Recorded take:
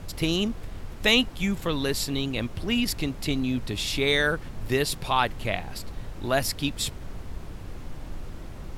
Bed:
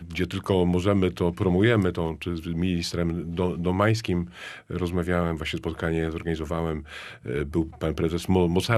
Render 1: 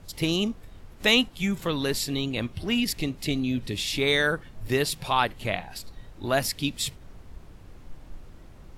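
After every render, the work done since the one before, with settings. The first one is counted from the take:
noise reduction from a noise print 9 dB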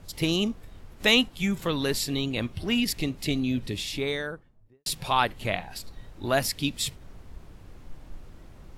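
0:03.51–0:04.86: fade out and dull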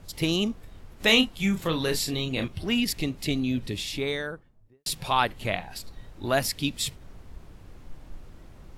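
0:01.06–0:02.48: double-tracking delay 31 ms −7 dB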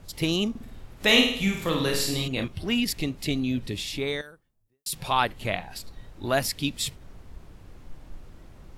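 0:00.50–0:02.28: flutter between parallel walls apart 9 metres, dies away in 0.65 s
0:04.21–0:04.93: first-order pre-emphasis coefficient 0.8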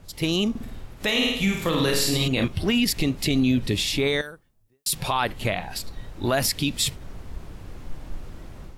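automatic gain control gain up to 8 dB
brickwall limiter −12.5 dBFS, peak gain reduction 11 dB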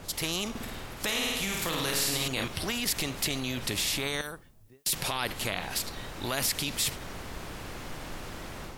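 in parallel at −2 dB: brickwall limiter −20.5 dBFS, peak gain reduction 8 dB
on the sum: every bin compressed towards the loudest bin 2 to 1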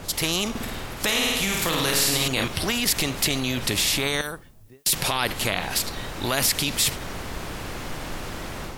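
level +7 dB

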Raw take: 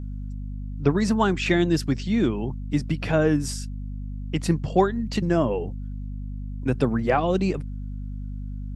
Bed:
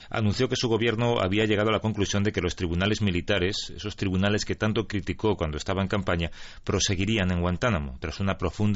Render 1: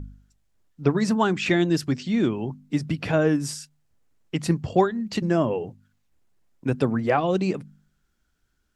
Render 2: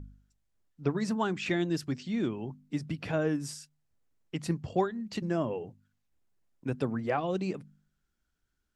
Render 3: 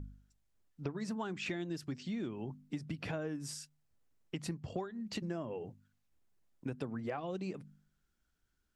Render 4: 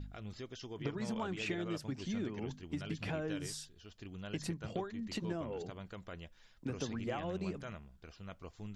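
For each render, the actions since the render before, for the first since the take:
hum removal 50 Hz, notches 5
level −8.5 dB
downward compressor 6 to 1, threshold −36 dBFS, peak gain reduction 14 dB
mix in bed −22 dB

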